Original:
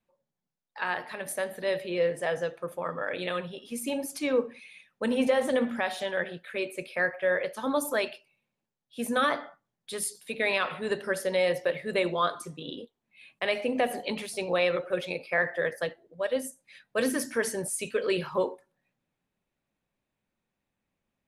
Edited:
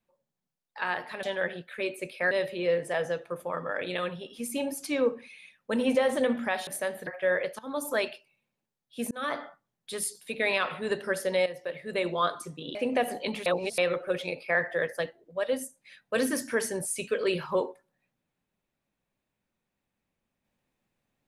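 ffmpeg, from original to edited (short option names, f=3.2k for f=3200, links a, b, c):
-filter_complex "[0:a]asplit=11[a][b][c][d][e][f][g][h][i][j][k];[a]atrim=end=1.232[l];[b]atrim=start=5.988:end=7.072[m];[c]atrim=start=1.628:end=5.992[n];[d]atrim=start=1.228:end=1.632[o];[e]atrim=start=7.068:end=7.59,asetpts=PTS-STARTPTS,afade=t=out:st=0.518:d=0.004:c=hsin:silence=0.133352[p];[f]atrim=start=7.59:end=9.11,asetpts=PTS-STARTPTS,afade=t=in:d=0.37:silence=0.133352,afade=t=out:st=1.516:d=0.004:c=hsin[q];[g]atrim=start=9.11:end=11.46,asetpts=PTS-STARTPTS,afade=t=in:d=0.31,afade=t=out:st=2.346:d=0.004:c=hsin:silence=0.211349[r];[h]atrim=start=11.46:end=12.752,asetpts=PTS-STARTPTS,afade=t=in:d=0.79:silence=0.211349[s];[i]atrim=start=13.578:end=14.292[t];[j]atrim=start=14.288:end=14.612,asetpts=PTS-STARTPTS,areverse[u];[k]atrim=start=14.608[v];[l][m]acrossfade=d=0.004:c1=hsin:c2=hsin[w];[w][n]acrossfade=d=0.004:c1=hsin:c2=hsin[x];[x][o]acrossfade=d=0.004:c1=hsin:c2=hsin[y];[p][q][r][s]concat=n=4:v=0:a=1[z];[y][z]acrossfade=d=0.004:c1=hsin:c2=hsin[aa];[aa][t]acrossfade=d=0.004:c1=hsin:c2=hsin[ab];[ab][u]acrossfade=d=0.004:c1=hsin:c2=hsin[ac];[ac][v]acrossfade=d=0.004:c1=hsin:c2=hsin"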